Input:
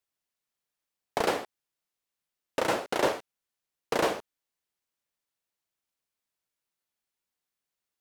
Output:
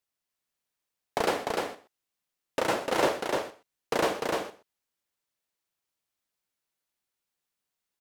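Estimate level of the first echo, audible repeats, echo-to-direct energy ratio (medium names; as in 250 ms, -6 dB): -19.0 dB, 3, -3.5 dB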